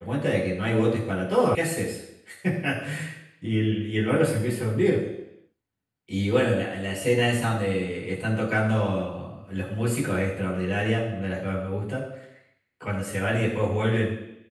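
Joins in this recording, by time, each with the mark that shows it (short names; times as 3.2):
1.55 sound cut off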